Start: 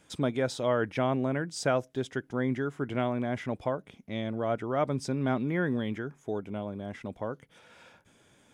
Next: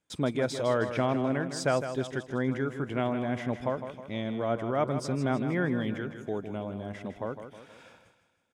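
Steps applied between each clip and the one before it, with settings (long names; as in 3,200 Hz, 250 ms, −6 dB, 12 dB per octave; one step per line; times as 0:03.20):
noise gate with hold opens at −50 dBFS
on a send: repeating echo 158 ms, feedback 49%, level −9.5 dB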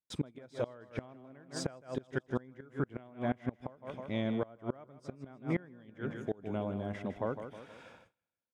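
noise gate with hold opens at −45 dBFS
high-shelf EQ 3,900 Hz −7 dB
gate with flip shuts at −21 dBFS, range −25 dB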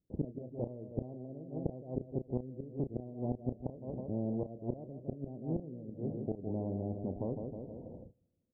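Gaussian smoothing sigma 21 samples
double-tracking delay 32 ms −12 dB
every bin compressed towards the loudest bin 2 to 1
level +4.5 dB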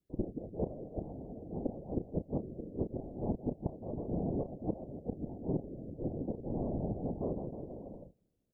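random phases in short frames
level +1 dB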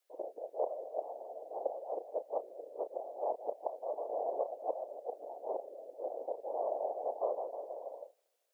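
Butterworth high-pass 550 Hz 36 dB per octave
level +10 dB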